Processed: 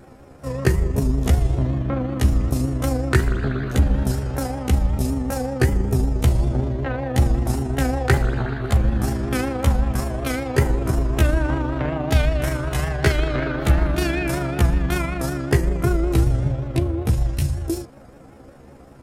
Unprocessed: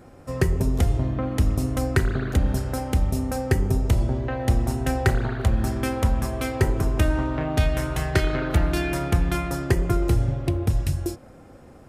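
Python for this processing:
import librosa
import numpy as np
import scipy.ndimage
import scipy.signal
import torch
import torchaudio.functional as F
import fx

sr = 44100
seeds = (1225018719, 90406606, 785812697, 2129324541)

y = fx.stretch_grains(x, sr, factor=1.6, grain_ms=79.0)
y = fx.vibrato(y, sr, rate_hz=5.3, depth_cents=73.0)
y = F.gain(torch.from_numpy(y), 3.5).numpy()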